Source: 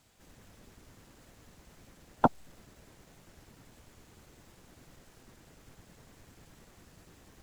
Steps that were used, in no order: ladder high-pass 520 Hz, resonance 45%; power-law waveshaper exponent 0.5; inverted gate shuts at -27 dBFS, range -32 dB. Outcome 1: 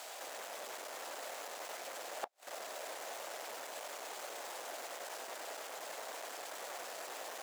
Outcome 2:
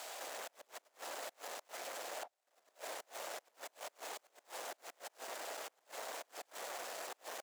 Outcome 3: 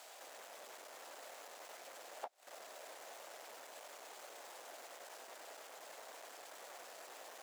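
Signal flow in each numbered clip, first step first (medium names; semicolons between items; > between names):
power-law waveshaper > ladder high-pass > inverted gate; power-law waveshaper > inverted gate > ladder high-pass; inverted gate > power-law waveshaper > ladder high-pass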